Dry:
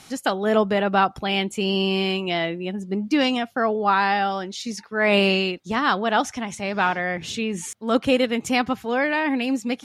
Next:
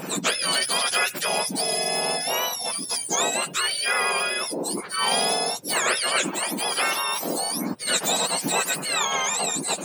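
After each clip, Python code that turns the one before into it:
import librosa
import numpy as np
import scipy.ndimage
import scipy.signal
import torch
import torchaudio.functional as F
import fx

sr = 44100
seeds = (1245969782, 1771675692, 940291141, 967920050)

y = fx.octave_mirror(x, sr, pivot_hz=1400.0)
y = fx.spectral_comp(y, sr, ratio=2.0)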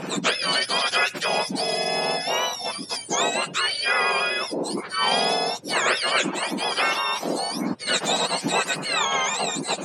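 y = scipy.signal.sosfilt(scipy.signal.butter(2, 5600.0, 'lowpass', fs=sr, output='sos'), x)
y = F.gain(torch.from_numpy(y), 2.0).numpy()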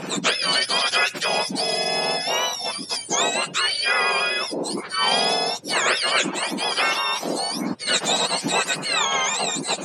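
y = fx.peak_eq(x, sr, hz=6500.0, db=3.5, octaves=2.5)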